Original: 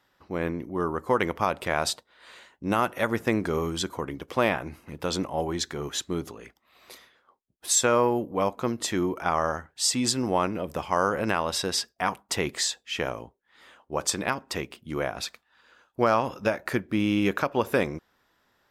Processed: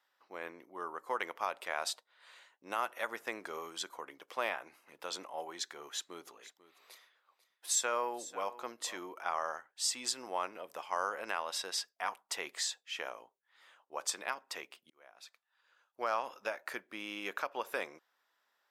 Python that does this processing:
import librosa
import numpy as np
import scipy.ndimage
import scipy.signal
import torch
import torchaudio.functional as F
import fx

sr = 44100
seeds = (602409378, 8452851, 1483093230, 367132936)

y = fx.echo_single(x, sr, ms=494, db=-16.5, at=(6.25, 9.04), fade=0.02)
y = fx.edit(y, sr, fx.fade_in_span(start_s=14.9, length_s=1.29), tone=tone)
y = scipy.signal.sosfilt(scipy.signal.butter(2, 660.0, 'highpass', fs=sr, output='sos'), y)
y = y * librosa.db_to_amplitude(-8.5)